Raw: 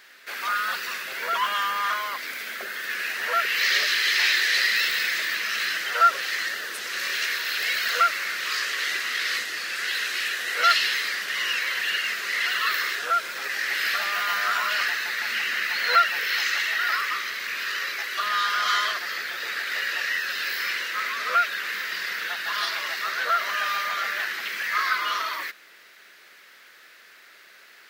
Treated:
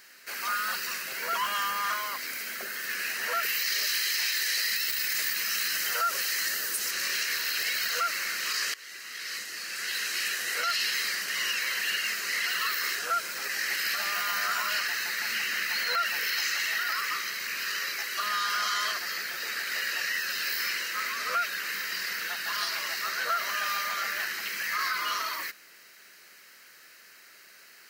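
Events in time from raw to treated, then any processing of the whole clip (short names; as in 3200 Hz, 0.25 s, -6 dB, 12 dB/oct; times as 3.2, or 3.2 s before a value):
3.43–6.91 high shelf 7600 Hz +9.5 dB
8.74–10.29 fade in, from -19.5 dB
whole clip: tone controls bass +8 dB, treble +9 dB; notch 3500 Hz, Q 5.7; limiter -14.5 dBFS; gain -4.5 dB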